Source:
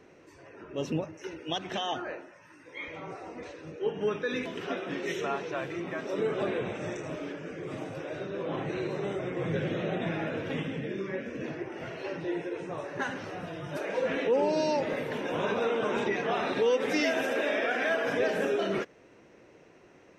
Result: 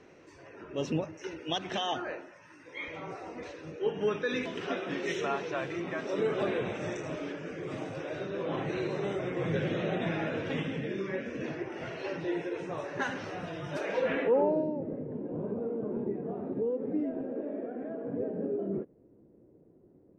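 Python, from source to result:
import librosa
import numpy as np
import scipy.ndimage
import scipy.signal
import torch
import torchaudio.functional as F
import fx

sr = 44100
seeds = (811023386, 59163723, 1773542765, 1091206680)

y = fx.filter_sweep_lowpass(x, sr, from_hz=7100.0, to_hz=320.0, start_s=13.86, end_s=14.74, q=0.9)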